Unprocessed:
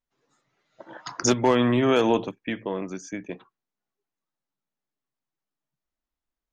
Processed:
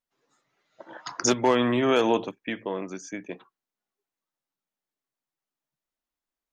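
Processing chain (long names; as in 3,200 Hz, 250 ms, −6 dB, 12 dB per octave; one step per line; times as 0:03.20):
low-shelf EQ 150 Hz −10.5 dB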